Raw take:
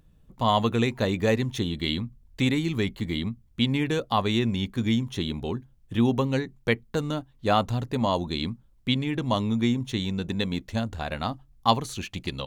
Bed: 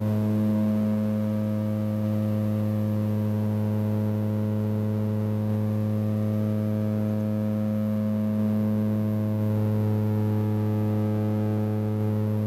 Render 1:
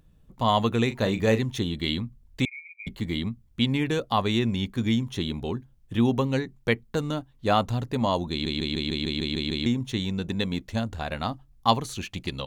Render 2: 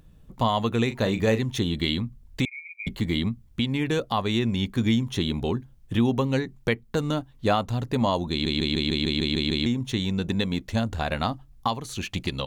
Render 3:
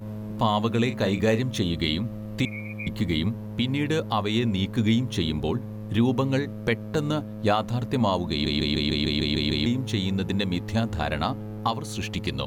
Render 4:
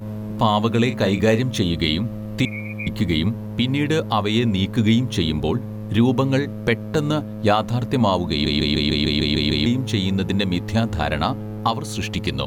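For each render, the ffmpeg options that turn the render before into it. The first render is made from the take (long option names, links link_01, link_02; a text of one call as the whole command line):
ffmpeg -i in.wav -filter_complex "[0:a]asettb=1/sr,asplit=3[link_01][link_02][link_03];[link_01]atrim=end=0.864[link_04];[link_02]atrim=start=0.86:end=1.39,asetpts=PTS-STARTPTS,afade=type=in:duration=0.004:curve=qsin,afade=type=out:start_time=0.526:duration=0.004:curve=qsin,asplit=2[link_05][link_06];[link_06]adelay=36,volume=-10dB[link_07];[link_05][link_07]amix=inputs=2:normalize=0,atrim=end_sample=23373[link_08];[link_03]atrim=start=1.386[link_09];[link_04][link_08]acrossfade=duration=0.004:curve1=hsin:curve2=qsin[link_10];[link_10][link_09]acrossfade=duration=0.004:curve1=qsin:curve2=hsin,asettb=1/sr,asplit=3[link_11][link_12][link_13];[link_11]atrim=end=2.454[link_14];[link_12]atrim=start=2.45:end=2.87,asetpts=PTS-STARTPTS,afade=type=in:duration=0.004:curve=qsin,afade=type=out:start_time=0.416:duration=0.004:curve=qsin,asuperpass=centerf=2300:order=12:qfactor=7.2[link_15];[link_13]atrim=start=2.866[link_16];[link_14][link_15]acrossfade=duration=0.004:curve1=hsin:curve2=qsin[link_17];[link_17][link_16]acrossfade=duration=0.004:curve1=qsin:curve2=hsin,asplit=10[link_18][link_19][link_20][link_21][link_22][link_23][link_24][link_25][link_26][link_27];[link_18]atrim=end=8.462[link_28];[link_19]atrim=start=8.308:end=8.462[link_29];[link_20]atrim=start=8.308:end=8.462[link_30];[link_21]atrim=start=8.308:end=8.462[link_31];[link_22]atrim=start=8.308:end=8.462[link_32];[link_23]atrim=start=8.308:end=8.462[link_33];[link_24]atrim=start=8.308:end=8.462[link_34];[link_25]atrim=start=8.308:end=8.462[link_35];[link_26]atrim=start=8.308:end=8.462[link_36];[link_27]atrim=start=9.658[link_37];[link_28][link_29]acrossfade=duration=0.004:curve1=hsin:curve2=hsin[link_38];[link_38][link_30]acrossfade=duration=0.004:curve1=hsin:curve2=hsin[link_39];[link_39][link_31]acrossfade=duration=0.004:curve1=hsin:curve2=hsin[link_40];[link_40][link_32]acrossfade=duration=0.004:curve1=hsin:curve2=hsin[link_41];[link_41][link_33]acrossfade=duration=0.004:curve1=hsin:curve2=hsin[link_42];[link_42][link_34]acrossfade=duration=0.004:curve1=hsin:curve2=hsin[link_43];[link_43][link_35]acrossfade=duration=0.004:curve1=hsin:curve2=hsin[link_44];[link_44][link_36]acrossfade=duration=0.004:curve1=hsin:curve2=hsin[link_45];[link_45][link_37]acrossfade=duration=0.004:curve1=hsin:curve2=hsin" out.wav
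ffmpeg -i in.wav -filter_complex "[0:a]asplit=2[link_01][link_02];[link_02]acompressor=threshold=-30dB:ratio=6,volume=-1dB[link_03];[link_01][link_03]amix=inputs=2:normalize=0,alimiter=limit=-12dB:level=0:latency=1:release=465" out.wav
ffmpeg -i in.wav -i bed.wav -filter_complex "[1:a]volume=-10.5dB[link_01];[0:a][link_01]amix=inputs=2:normalize=0" out.wav
ffmpeg -i in.wav -af "volume=5dB" out.wav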